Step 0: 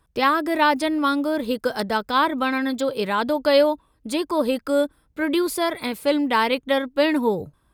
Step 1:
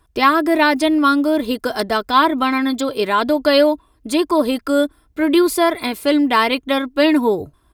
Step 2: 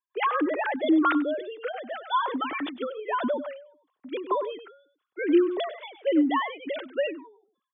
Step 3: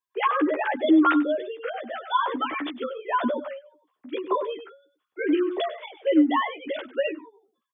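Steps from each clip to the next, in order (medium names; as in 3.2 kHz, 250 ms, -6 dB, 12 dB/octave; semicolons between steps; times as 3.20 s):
comb 2.9 ms, depth 48%; trim +4.5 dB
formants replaced by sine waves; delay 97 ms -14 dB; endings held to a fixed fall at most 100 dB/s; trim -7 dB
doubling 13 ms -3 dB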